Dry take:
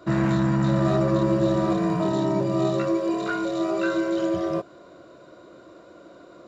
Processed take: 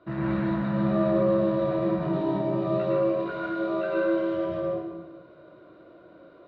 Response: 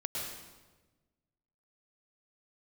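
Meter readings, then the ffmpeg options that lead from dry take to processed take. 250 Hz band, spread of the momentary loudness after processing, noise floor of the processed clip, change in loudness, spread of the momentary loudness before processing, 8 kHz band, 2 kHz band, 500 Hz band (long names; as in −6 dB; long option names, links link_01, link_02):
−3.5 dB, 7 LU, −52 dBFS, −2.5 dB, 5 LU, can't be measured, −3.5 dB, −0.5 dB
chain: -filter_complex "[0:a]lowpass=frequency=3500:width=0.5412,lowpass=frequency=3500:width=1.3066[link_01];[1:a]atrim=start_sample=2205[link_02];[link_01][link_02]afir=irnorm=-1:irlink=0,volume=-7.5dB"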